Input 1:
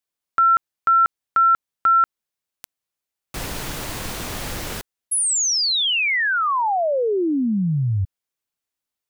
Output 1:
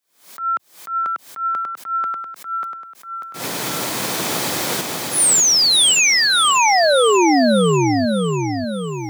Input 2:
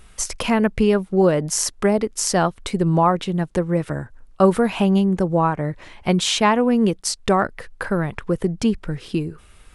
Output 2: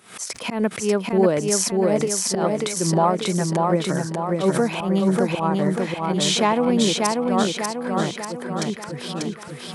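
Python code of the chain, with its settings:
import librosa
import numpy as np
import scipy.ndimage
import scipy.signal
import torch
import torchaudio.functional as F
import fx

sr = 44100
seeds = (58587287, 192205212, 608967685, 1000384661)

p1 = fx.recorder_agc(x, sr, target_db=-10.0, rise_db_per_s=21.0, max_gain_db=30)
p2 = scipy.signal.sosfilt(scipy.signal.bessel(6, 200.0, 'highpass', norm='mag', fs=sr, output='sos'), p1)
p3 = fx.dynamic_eq(p2, sr, hz=1600.0, q=1.4, threshold_db=-29.0, ratio=4.0, max_db=-6)
p4 = fx.auto_swell(p3, sr, attack_ms=108.0)
p5 = fx.notch(p4, sr, hz=2800.0, q=15.0)
p6 = p5 + fx.echo_feedback(p5, sr, ms=591, feedback_pct=53, wet_db=-3.0, dry=0)
p7 = fx.pre_swell(p6, sr, db_per_s=130.0)
y = p7 * 10.0 ** (-1.0 / 20.0)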